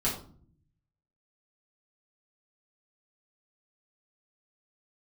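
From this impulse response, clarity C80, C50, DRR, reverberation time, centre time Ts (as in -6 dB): 11.0 dB, 6.5 dB, -7.0 dB, 0.50 s, 28 ms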